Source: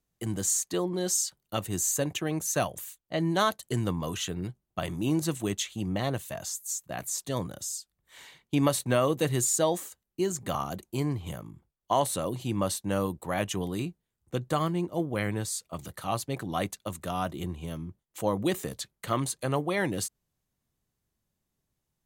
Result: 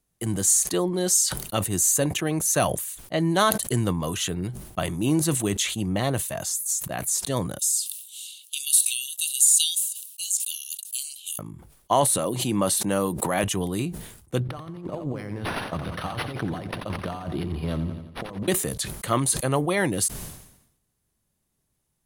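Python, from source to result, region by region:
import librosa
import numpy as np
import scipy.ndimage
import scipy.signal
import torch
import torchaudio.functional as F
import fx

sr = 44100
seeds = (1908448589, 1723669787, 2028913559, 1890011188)

y = fx.chain(x, sr, fx.cheby_ripple_highpass(hz=2700.0, ripple_db=3),
    fx.high_shelf(hz=5800.0, db=7.5),
    fx.band_squash(depth_pct=40), at=(7.59, 11.39))
y = fx.chain(y, sr, fx.highpass(hz=150.0, slope=12),
    fx.clip_hard(threshold_db=-14.5),
    fx.pre_swell(db_per_s=36.0), at=(12.18, 13.44))
y = fx.chain(y, sr, fx.over_compress(threshold_db=-35.0, ratio=-0.5),
    fx.echo_feedback(ms=87, feedback_pct=58, wet_db=-11.0),
    fx.resample_linear(factor=6), at=(14.4, 18.48))
y = fx.peak_eq(y, sr, hz=10000.0, db=10.0, octaves=0.37)
y = fx.sustainer(y, sr, db_per_s=70.0)
y = F.gain(torch.from_numpy(y), 4.5).numpy()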